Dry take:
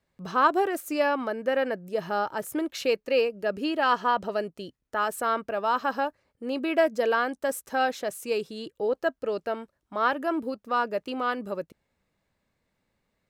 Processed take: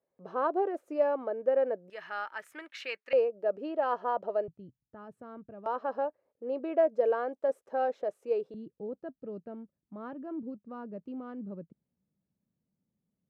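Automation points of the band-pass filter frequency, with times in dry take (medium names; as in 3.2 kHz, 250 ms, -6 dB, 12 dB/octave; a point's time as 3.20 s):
band-pass filter, Q 2
520 Hz
from 1.90 s 1.9 kHz
from 3.13 s 580 Hz
from 4.48 s 130 Hz
from 5.66 s 530 Hz
from 8.54 s 180 Hz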